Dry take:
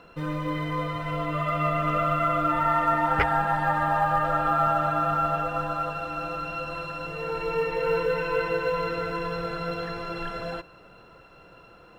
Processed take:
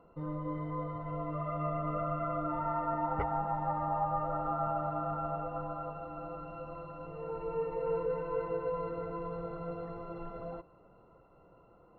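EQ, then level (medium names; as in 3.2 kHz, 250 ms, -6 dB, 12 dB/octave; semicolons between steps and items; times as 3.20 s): Savitzky-Golay filter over 65 samples; -7.5 dB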